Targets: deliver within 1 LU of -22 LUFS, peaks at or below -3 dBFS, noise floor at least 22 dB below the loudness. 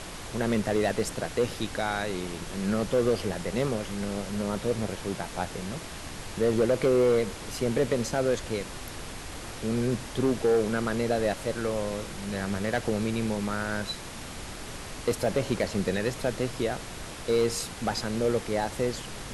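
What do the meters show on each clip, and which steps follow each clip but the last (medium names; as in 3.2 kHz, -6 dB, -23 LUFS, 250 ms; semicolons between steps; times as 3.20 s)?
clipped samples 0.8%; clipping level -17.5 dBFS; noise floor -40 dBFS; noise floor target -51 dBFS; loudness -29.0 LUFS; peak level -17.5 dBFS; loudness target -22.0 LUFS
-> clip repair -17.5 dBFS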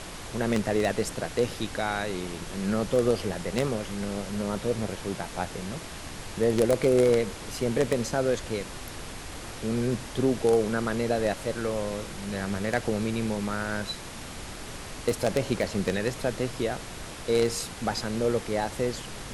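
clipped samples 0.0%; noise floor -40 dBFS; noise floor target -51 dBFS
-> noise print and reduce 11 dB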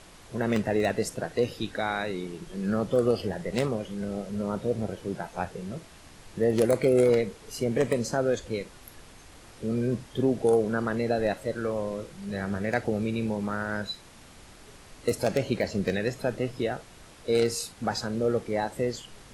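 noise floor -51 dBFS; loudness -28.5 LUFS; peak level -8.5 dBFS; loudness target -22.0 LUFS
-> trim +6.5 dB; peak limiter -3 dBFS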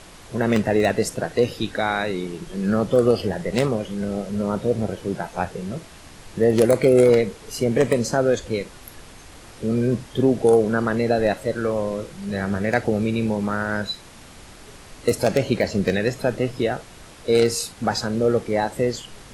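loudness -22.0 LUFS; peak level -3.0 dBFS; noise floor -44 dBFS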